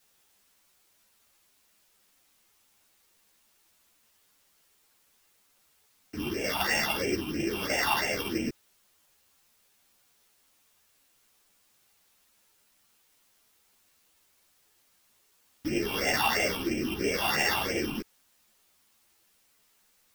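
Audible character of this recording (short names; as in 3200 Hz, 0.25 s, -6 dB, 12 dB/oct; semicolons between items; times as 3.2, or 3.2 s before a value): a buzz of ramps at a fixed pitch in blocks of 16 samples; phasing stages 6, 3 Hz, lowest notch 500–1100 Hz; a quantiser's noise floor 12-bit, dither triangular; a shimmering, thickened sound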